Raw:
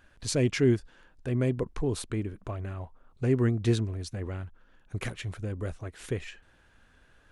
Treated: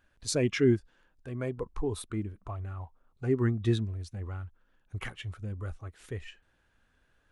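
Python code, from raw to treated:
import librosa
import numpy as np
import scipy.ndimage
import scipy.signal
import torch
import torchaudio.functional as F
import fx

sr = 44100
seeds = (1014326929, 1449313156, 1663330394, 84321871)

y = fx.noise_reduce_blind(x, sr, reduce_db=9)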